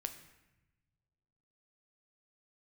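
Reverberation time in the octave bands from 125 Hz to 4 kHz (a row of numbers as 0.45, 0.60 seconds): 2.1, 1.7, 1.0, 0.95, 1.0, 0.80 seconds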